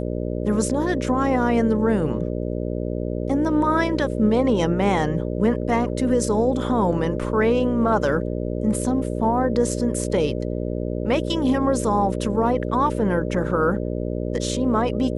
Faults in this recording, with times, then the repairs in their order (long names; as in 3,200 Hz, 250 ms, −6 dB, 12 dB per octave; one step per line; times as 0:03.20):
mains buzz 60 Hz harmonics 10 −26 dBFS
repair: hum removal 60 Hz, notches 10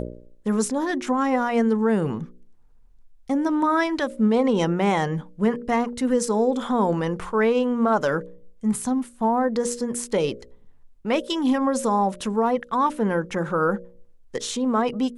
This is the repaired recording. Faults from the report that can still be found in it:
none of them is left